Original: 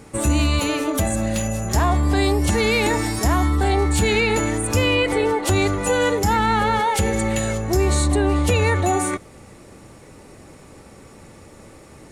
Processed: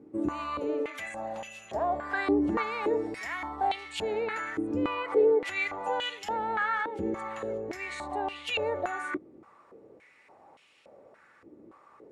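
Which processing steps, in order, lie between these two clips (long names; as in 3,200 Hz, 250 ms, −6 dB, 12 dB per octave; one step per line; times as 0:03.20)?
0:01.99–0:02.62: parametric band 490 Hz → 1,700 Hz +7.5 dB 2 octaves
band-pass on a step sequencer 3.5 Hz 320–2,900 Hz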